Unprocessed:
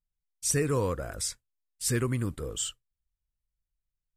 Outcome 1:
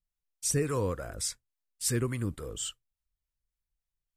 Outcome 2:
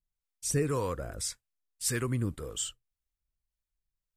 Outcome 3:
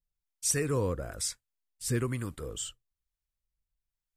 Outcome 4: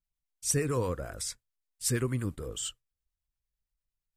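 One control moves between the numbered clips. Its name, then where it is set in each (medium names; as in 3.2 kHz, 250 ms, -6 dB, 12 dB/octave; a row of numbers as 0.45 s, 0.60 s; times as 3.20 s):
harmonic tremolo, rate: 3.5 Hz, 1.8 Hz, 1.1 Hz, 8.8 Hz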